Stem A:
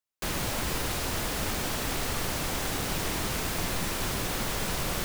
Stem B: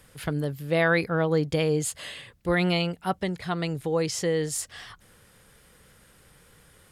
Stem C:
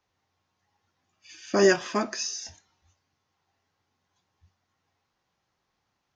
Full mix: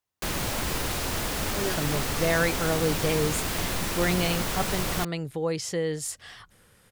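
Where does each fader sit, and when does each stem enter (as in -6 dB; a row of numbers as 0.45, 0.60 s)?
+1.5, -2.5, -13.0 dB; 0.00, 1.50, 0.00 s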